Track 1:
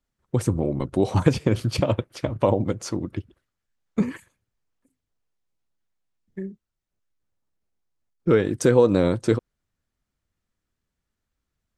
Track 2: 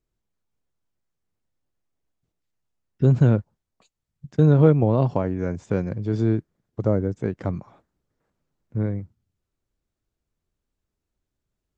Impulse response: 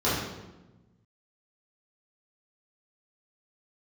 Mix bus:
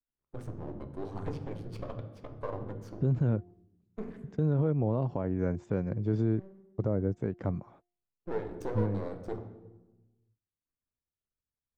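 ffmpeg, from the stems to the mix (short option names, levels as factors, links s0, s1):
-filter_complex "[0:a]bandreject=f=50.62:t=h:w=4,bandreject=f=101.24:t=h:w=4,bandreject=f=151.86:t=h:w=4,bandreject=f=202.48:t=h:w=4,bandreject=f=253.1:t=h:w=4,bandreject=f=303.72:t=h:w=4,bandreject=f=354.34:t=h:w=4,aeval=exprs='max(val(0),0)':c=same,volume=0.2,asplit=2[s0][s1];[s1]volume=0.106[s2];[1:a]agate=range=0.0316:threshold=0.00251:ratio=16:detection=peak,bandreject=f=353.2:t=h:w=4,bandreject=f=706.4:t=h:w=4,volume=0.668[s3];[2:a]atrim=start_sample=2205[s4];[s2][s4]afir=irnorm=-1:irlink=0[s5];[s0][s3][s5]amix=inputs=3:normalize=0,highshelf=f=2800:g=-11.5,alimiter=limit=0.112:level=0:latency=1:release=202"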